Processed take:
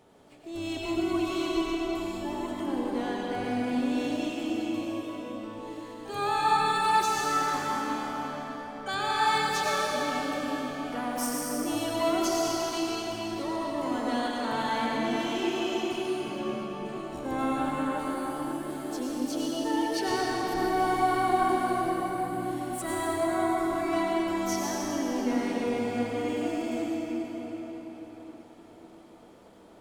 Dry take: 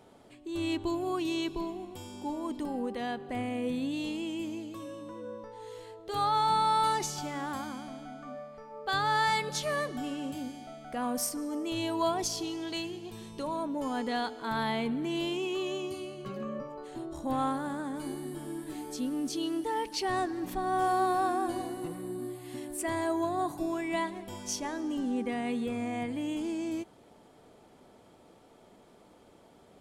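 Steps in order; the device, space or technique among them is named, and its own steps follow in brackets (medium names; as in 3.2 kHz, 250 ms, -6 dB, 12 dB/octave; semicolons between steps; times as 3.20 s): shimmer-style reverb (harmony voices +12 st -12 dB; reverberation RT60 5.1 s, pre-delay 82 ms, DRR -4.5 dB); trim -2.5 dB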